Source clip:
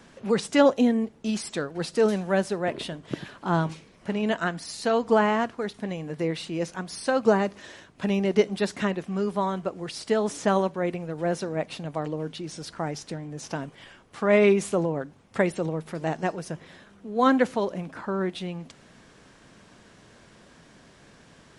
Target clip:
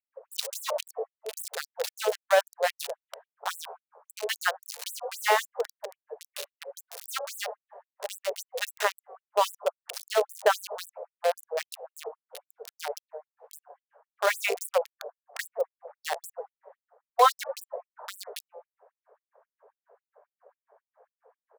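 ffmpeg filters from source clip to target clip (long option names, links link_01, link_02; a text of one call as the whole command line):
ffmpeg -i in.wav -filter_complex "[0:a]bandreject=frequency=60:width_type=h:width=6,bandreject=frequency=120:width_type=h:width=6,bandreject=frequency=180:width_type=h:width=6,acrossover=split=820[link_01][link_02];[link_01]asplit=7[link_03][link_04][link_05][link_06][link_07][link_08][link_09];[link_04]adelay=81,afreqshift=43,volume=-16dB[link_10];[link_05]adelay=162,afreqshift=86,volume=-20.7dB[link_11];[link_06]adelay=243,afreqshift=129,volume=-25.5dB[link_12];[link_07]adelay=324,afreqshift=172,volume=-30.2dB[link_13];[link_08]adelay=405,afreqshift=215,volume=-34.9dB[link_14];[link_09]adelay=486,afreqshift=258,volume=-39.7dB[link_15];[link_03][link_10][link_11][link_12][link_13][link_14][link_15]amix=inputs=7:normalize=0[link_16];[link_02]aeval=exprs='val(0)*gte(abs(val(0)),0.0316)':channel_layout=same[link_17];[link_16][link_17]amix=inputs=2:normalize=0,alimiter=level_in=11dB:limit=-1dB:release=50:level=0:latency=1,afftfilt=real='re*gte(b*sr/1024,390*pow(7800/390,0.5+0.5*sin(2*PI*3.7*pts/sr)))':imag='im*gte(b*sr/1024,390*pow(7800/390,0.5+0.5*sin(2*PI*3.7*pts/sr)))':win_size=1024:overlap=0.75,volume=-5dB" out.wav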